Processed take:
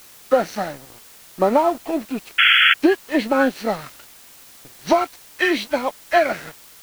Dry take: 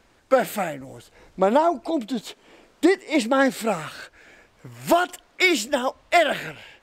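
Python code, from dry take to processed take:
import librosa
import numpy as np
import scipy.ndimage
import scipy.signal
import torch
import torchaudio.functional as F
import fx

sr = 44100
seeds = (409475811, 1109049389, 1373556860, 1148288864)

y = fx.freq_compress(x, sr, knee_hz=1200.0, ratio=1.5)
y = np.sign(y) * np.maximum(np.abs(y) - 10.0 ** (-37.5 / 20.0), 0.0)
y = fx.quant_dither(y, sr, seeds[0], bits=8, dither='triangular')
y = fx.spec_paint(y, sr, seeds[1], shape='noise', start_s=2.38, length_s=0.36, low_hz=1300.0, high_hz=3400.0, level_db=-16.0)
y = y * 10.0 ** (2.5 / 20.0)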